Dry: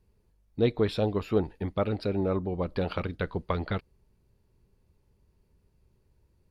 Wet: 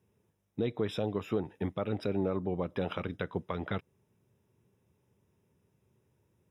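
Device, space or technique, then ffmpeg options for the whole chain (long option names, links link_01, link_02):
PA system with an anti-feedback notch: -af "highpass=frequency=100:width=0.5412,highpass=frequency=100:width=1.3066,asuperstop=centerf=4400:order=12:qfactor=4.4,alimiter=limit=-20.5dB:level=0:latency=1:release=195"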